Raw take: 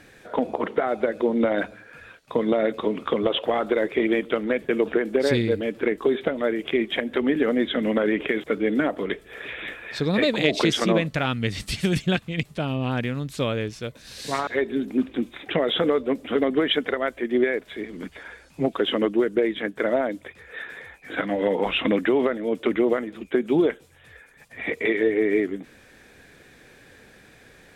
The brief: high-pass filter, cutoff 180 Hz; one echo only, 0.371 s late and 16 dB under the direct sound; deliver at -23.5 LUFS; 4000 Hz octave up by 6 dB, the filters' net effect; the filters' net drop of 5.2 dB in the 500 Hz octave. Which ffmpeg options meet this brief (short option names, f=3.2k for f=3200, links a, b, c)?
-af "highpass=180,equalizer=f=500:t=o:g=-6.5,equalizer=f=4k:t=o:g=8,aecho=1:1:371:0.158,volume=2.5dB"